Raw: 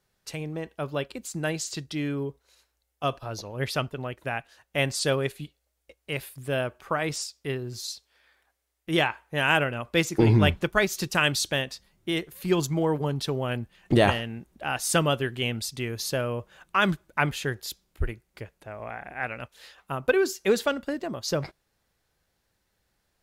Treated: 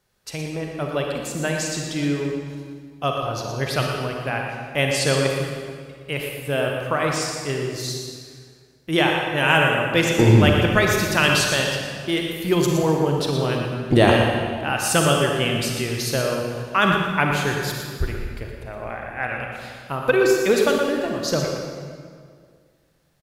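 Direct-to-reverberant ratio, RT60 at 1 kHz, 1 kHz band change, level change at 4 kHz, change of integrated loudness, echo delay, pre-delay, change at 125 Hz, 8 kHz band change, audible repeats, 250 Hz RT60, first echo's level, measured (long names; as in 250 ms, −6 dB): 0.0 dB, 1.9 s, +6.5 dB, +6.5 dB, +6.5 dB, 118 ms, 36 ms, +6.5 dB, +6.0 dB, 1, 2.2 s, −8.0 dB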